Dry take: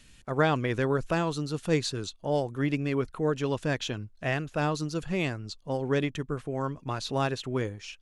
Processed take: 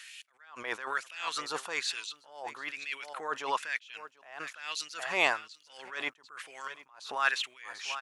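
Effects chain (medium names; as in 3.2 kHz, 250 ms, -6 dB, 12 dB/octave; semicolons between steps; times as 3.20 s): LFO high-pass sine 1.1 Hz 850–2600 Hz; delay 741 ms -20 dB; attacks held to a fixed rise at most 100 dB/s; trim +7.5 dB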